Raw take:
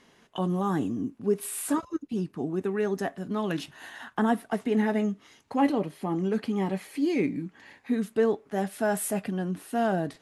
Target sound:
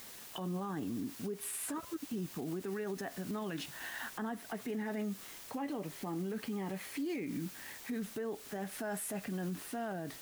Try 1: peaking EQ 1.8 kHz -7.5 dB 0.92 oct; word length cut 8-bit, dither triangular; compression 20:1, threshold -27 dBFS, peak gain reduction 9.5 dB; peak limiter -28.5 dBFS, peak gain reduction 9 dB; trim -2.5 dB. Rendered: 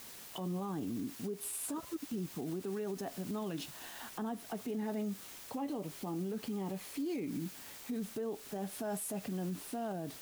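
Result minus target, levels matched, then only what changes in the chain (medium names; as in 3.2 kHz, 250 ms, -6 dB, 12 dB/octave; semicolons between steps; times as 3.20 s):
2 kHz band -7.0 dB
change: peaking EQ 1.8 kHz +3.5 dB 0.92 oct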